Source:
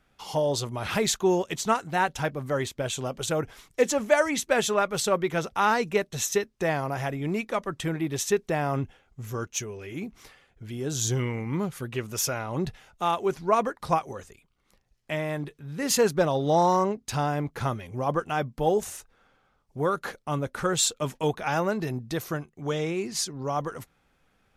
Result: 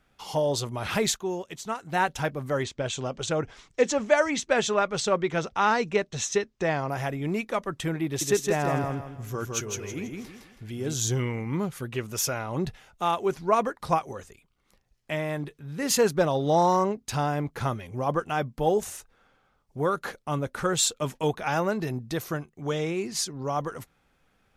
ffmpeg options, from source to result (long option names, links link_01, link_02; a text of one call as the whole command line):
ffmpeg -i in.wav -filter_complex "[0:a]asettb=1/sr,asplit=3[link_01][link_02][link_03];[link_01]atrim=end=2.634[link_04];[link_02]atrim=start=2.63:end=6.89,asetpts=PTS-STARTPTS,afade=type=in:duration=0.004:curve=qsin,afade=type=out:start_time=4.256:duration=0.004:curve=qsin,lowpass=frequency=7400:width=0.5412,lowpass=frequency=7400:width=1.3066[link_05];[link_03]atrim=start=6.886[link_06];[link_04][link_05]acrossfade=duration=0.004:curve1=hsin:curve2=qsin[link_07];[link_07][link_06]acrossfade=duration=0.004:curve1=qsin:curve2=hsin,asettb=1/sr,asplit=3[link_08][link_09][link_10];[link_08]atrim=end=8.054[link_11];[link_09]atrim=start=8.05:end=10.94,asetpts=PTS-STARTPTS,afade=type=in:duration=0.004:curve=qsin,afade=type=out:start_time=2.886:duration=0.004:curve=qsin,aecho=1:1:162|324|486|648:0.668|0.214|0.0684|0.0219,atrim=end_sample=127449[link_12];[link_10]atrim=start=10.936[link_13];[link_11][link_12]acrossfade=duration=0.004:curve1=hsin:curve2=qsin[link_14];[link_14][link_13]acrossfade=duration=0.004:curve1=qsin:curve2=hsin,asplit=3[link_15][link_16][link_17];[link_15]atrim=end=1.26,asetpts=PTS-STARTPTS,afade=type=out:start_time=1.1:duration=0.16:curve=qua:silence=0.398107[link_18];[link_16]atrim=start=1.26:end=1.77,asetpts=PTS-STARTPTS,volume=-8dB[link_19];[link_17]atrim=start=1.77,asetpts=PTS-STARTPTS,afade=type=in:duration=0.16:curve=qua:silence=0.398107[link_20];[link_18][link_19][link_20]concat=n=3:v=0:a=1" out.wav